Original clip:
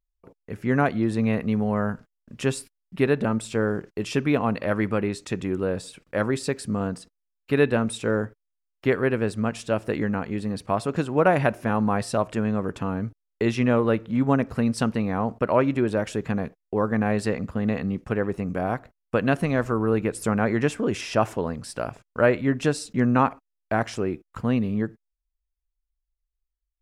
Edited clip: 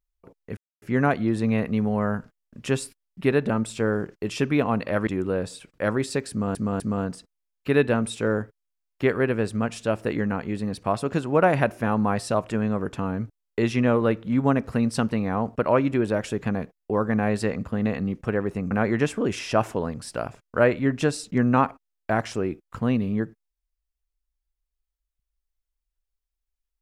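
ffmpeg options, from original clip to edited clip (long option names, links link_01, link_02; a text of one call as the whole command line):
ffmpeg -i in.wav -filter_complex "[0:a]asplit=6[link_01][link_02][link_03][link_04][link_05][link_06];[link_01]atrim=end=0.57,asetpts=PTS-STARTPTS,afade=type=out:start_time=0.566:duration=0.004:curve=hsin,apad=pad_dur=0.25[link_07];[link_02]atrim=start=0.57:end=4.822,asetpts=PTS-STARTPTS,afade=type=in:duration=0.004:curve=hsin[link_08];[link_03]atrim=start=5.398:end=6.882[link_09];[link_04]atrim=start=6.628:end=6.882[link_10];[link_05]atrim=start=6.628:end=18.542[link_11];[link_06]atrim=start=20.328[link_12];[link_07][link_08]concat=n=2:v=0:a=1[link_13];[link_13][link_09]acrossfade=duration=0.004:curve1=hsin:curve2=hsin[link_14];[link_14][link_10]acrossfade=duration=0.004:curve1=hsin:curve2=hsin[link_15];[link_15][link_11]acrossfade=duration=0.004:curve1=hsin:curve2=hsin[link_16];[link_16][link_12]acrossfade=duration=0.004:curve1=hsin:curve2=hsin" out.wav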